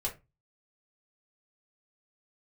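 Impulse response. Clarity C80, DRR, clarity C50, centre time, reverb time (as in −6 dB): 21.0 dB, −3.5 dB, 13.0 dB, 15 ms, 0.25 s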